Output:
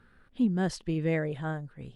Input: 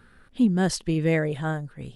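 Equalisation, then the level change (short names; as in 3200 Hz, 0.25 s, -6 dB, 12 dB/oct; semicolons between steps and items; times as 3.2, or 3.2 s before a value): LPF 3800 Hz 6 dB/oct; -5.5 dB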